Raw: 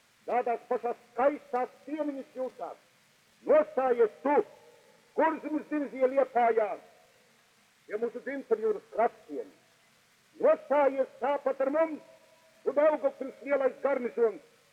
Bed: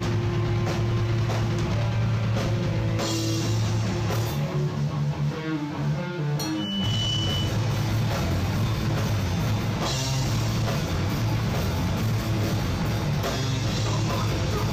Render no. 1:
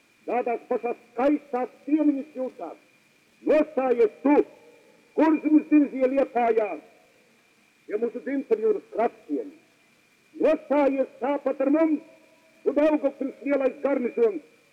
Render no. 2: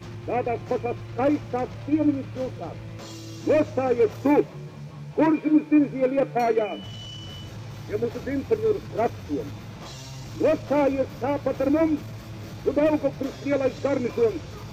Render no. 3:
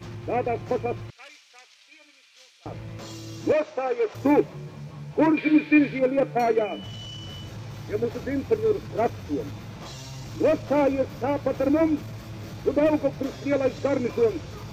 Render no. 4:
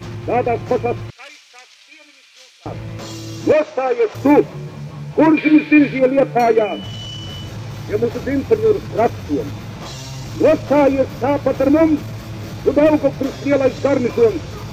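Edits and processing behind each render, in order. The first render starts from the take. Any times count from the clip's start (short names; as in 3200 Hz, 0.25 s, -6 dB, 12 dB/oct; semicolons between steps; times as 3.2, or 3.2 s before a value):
overloaded stage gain 19 dB; small resonant body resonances 310/2400 Hz, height 15 dB, ringing for 30 ms
add bed -13 dB
1.1–2.66 Butterworth band-pass 6000 Hz, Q 0.72; 3.52–4.15 BPF 530–6000 Hz; 5.37–5.99 band shelf 2700 Hz +13 dB
gain +8.5 dB; limiter -2 dBFS, peak gain reduction 2 dB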